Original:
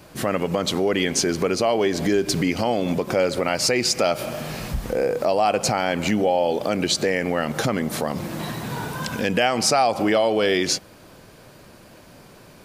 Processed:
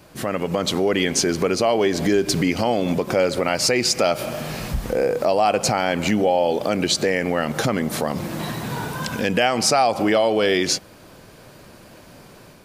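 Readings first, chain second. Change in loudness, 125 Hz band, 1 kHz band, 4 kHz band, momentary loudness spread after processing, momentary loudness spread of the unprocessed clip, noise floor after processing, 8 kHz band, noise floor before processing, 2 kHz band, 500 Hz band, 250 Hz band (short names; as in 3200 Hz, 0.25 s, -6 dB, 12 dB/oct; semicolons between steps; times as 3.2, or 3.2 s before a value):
+1.5 dB, +1.5 dB, +1.5 dB, +1.5 dB, 9 LU, 9 LU, -46 dBFS, +1.5 dB, -48 dBFS, +1.5 dB, +1.5 dB, +1.5 dB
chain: AGC gain up to 4 dB; gain -2 dB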